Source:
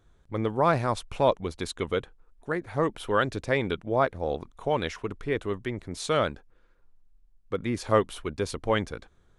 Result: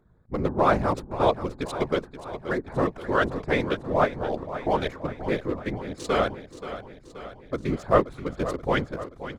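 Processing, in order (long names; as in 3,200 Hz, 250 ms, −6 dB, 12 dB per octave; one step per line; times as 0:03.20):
adaptive Wiener filter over 15 samples
random phases in short frames
repeating echo 528 ms, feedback 59%, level −12.5 dB
level +2 dB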